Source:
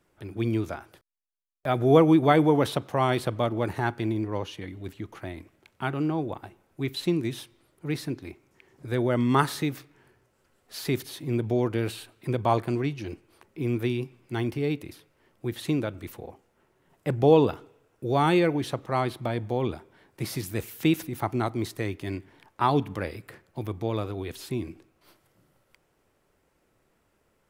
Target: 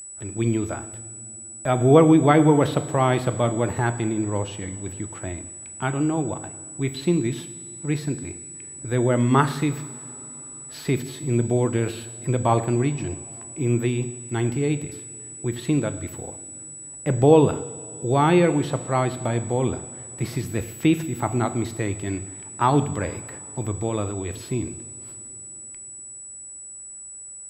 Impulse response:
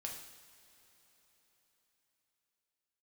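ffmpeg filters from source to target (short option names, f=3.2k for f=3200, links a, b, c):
-filter_complex "[0:a]asplit=2[a][b];[1:a]atrim=start_sample=2205,lowshelf=f=270:g=8[c];[b][c]afir=irnorm=-1:irlink=0,volume=-3dB[d];[a][d]amix=inputs=2:normalize=0,aeval=exprs='val(0)+0.0251*sin(2*PI*7900*n/s)':c=same,acrossover=split=3500[e][f];[f]acompressor=threshold=-39dB:ratio=4:attack=1:release=60[g];[e][g]amix=inputs=2:normalize=0"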